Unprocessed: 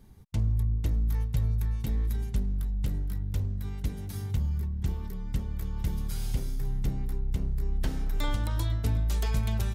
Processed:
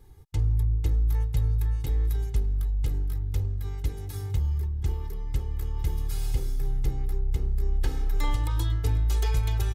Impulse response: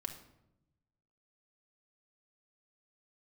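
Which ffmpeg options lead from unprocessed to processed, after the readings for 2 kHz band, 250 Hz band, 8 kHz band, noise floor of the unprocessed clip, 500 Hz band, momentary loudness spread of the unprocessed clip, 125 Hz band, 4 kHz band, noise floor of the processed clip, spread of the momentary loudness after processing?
+0.5 dB, −5.0 dB, +1.5 dB, −36 dBFS, +2.5 dB, 6 LU, +2.0 dB, +1.0 dB, −35 dBFS, 6 LU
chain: -af "aecho=1:1:2.4:0.81,volume=-1dB"

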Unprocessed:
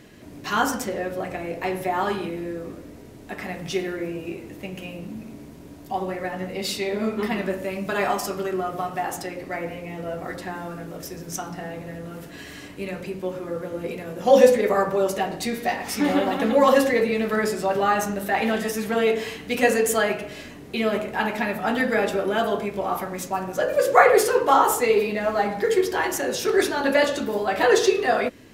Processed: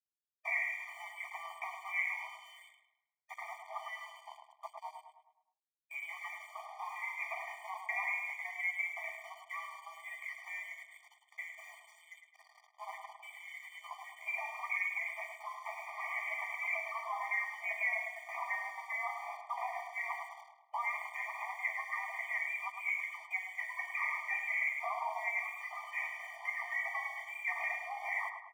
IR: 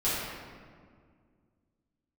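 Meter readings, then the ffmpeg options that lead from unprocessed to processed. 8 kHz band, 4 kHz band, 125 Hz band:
−26.0 dB, −23.0 dB, below −40 dB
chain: -filter_complex "[0:a]anlmdn=2.51,afftfilt=real='re*lt(hypot(re,im),0.501)':imag='im*lt(hypot(re,im),0.501)':win_size=1024:overlap=0.75,highpass=frequency=710:width=0.5412,highpass=frequency=710:width=1.3066,alimiter=limit=-21.5dB:level=0:latency=1:release=273,lowpass=frequency=2900:width_type=q:width=0.5098,lowpass=frequency=2900:width_type=q:width=0.6013,lowpass=frequency=2900:width_type=q:width=0.9,lowpass=frequency=2900:width_type=q:width=2.563,afreqshift=-3400,aeval=exprs='sgn(val(0))*max(abs(val(0))-0.00188,0)':channel_layout=same,asplit=2[link_01][link_02];[link_02]adelay=105,lowpass=frequency=2400:poles=1,volume=-5.5dB,asplit=2[link_03][link_04];[link_04]adelay=105,lowpass=frequency=2400:poles=1,volume=0.51,asplit=2[link_05][link_06];[link_06]adelay=105,lowpass=frequency=2400:poles=1,volume=0.51,asplit=2[link_07][link_08];[link_08]adelay=105,lowpass=frequency=2400:poles=1,volume=0.51,asplit=2[link_09][link_10];[link_10]adelay=105,lowpass=frequency=2400:poles=1,volume=0.51,asplit=2[link_11][link_12];[link_12]adelay=105,lowpass=frequency=2400:poles=1,volume=0.51[link_13];[link_03][link_05][link_07][link_09][link_11][link_13]amix=inputs=6:normalize=0[link_14];[link_01][link_14]amix=inputs=2:normalize=0,afftfilt=real='re*eq(mod(floor(b*sr/1024/610),2),1)':imag='im*eq(mod(floor(b*sr/1024/610),2),1)':win_size=1024:overlap=0.75"

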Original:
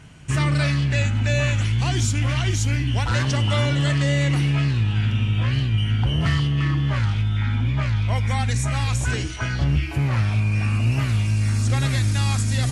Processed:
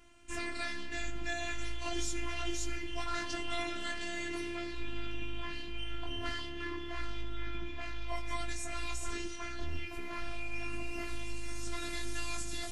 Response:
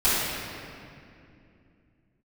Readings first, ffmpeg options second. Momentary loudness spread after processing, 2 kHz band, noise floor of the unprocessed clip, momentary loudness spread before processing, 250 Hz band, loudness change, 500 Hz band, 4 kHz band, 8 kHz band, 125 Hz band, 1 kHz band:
5 LU, −11.5 dB, −25 dBFS, 2 LU, −16.0 dB, −18.0 dB, −11.5 dB, −12.0 dB, −11.5 dB, −30.5 dB, −11.0 dB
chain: -filter_complex "[0:a]asplit=2[link_01][link_02];[1:a]atrim=start_sample=2205,adelay=22[link_03];[link_02][link_03]afir=irnorm=-1:irlink=0,volume=-32dB[link_04];[link_01][link_04]amix=inputs=2:normalize=0,flanger=delay=18:depth=2.8:speed=0.44,afftfilt=real='hypot(re,im)*cos(PI*b)':imag='0':win_size=512:overlap=0.75,volume=-5dB"

